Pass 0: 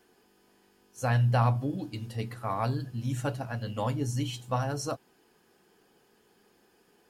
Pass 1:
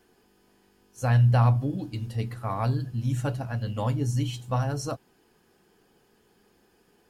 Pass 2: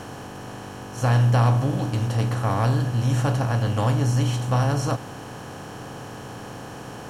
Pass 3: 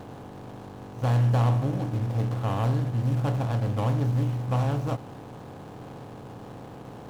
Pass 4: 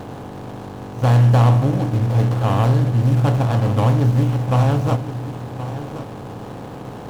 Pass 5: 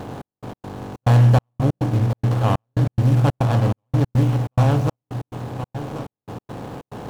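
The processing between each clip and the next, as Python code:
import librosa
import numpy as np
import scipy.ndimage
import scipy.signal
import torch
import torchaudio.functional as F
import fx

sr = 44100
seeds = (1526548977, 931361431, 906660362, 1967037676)

y1 = fx.low_shelf(x, sr, hz=130.0, db=10.0)
y2 = fx.bin_compress(y1, sr, power=0.4)
y3 = scipy.signal.medfilt(y2, 25)
y3 = y3 * librosa.db_to_amplitude(-3.5)
y4 = y3 + 10.0 ** (-12.5 / 20.0) * np.pad(y3, (int(1074 * sr / 1000.0), 0))[:len(y3)]
y4 = y4 * librosa.db_to_amplitude(9.0)
y5 = fx.step_gate(y4, sr, bpm=141, pattern='xx..x.xxx.x', floor_db=-60.0, edge_ms=4.5)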